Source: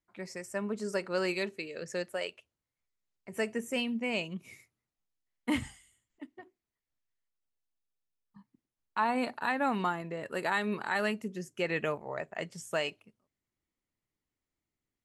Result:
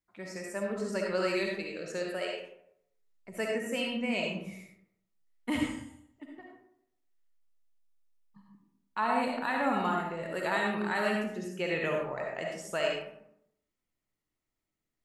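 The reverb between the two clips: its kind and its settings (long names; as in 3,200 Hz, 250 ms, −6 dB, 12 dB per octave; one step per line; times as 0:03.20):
comb and all-pass reverb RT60 0.74 s, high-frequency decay 0.5×, pre-delay 25 ms, DRR −1 dB
level −2 dB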